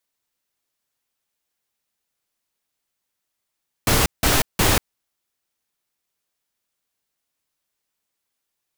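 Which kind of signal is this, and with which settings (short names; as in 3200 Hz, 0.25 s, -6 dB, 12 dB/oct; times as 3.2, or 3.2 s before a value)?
noise bursts pink, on 0.19 s, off 0.17 s, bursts 3, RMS -17 dBFS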